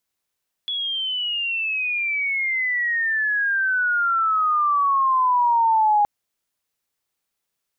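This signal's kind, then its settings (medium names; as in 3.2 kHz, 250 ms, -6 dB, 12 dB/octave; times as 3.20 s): sweep logarithmic 3.4 kHz -> 820 Hz -23 dBFS -> -14 dBFS 5.37 s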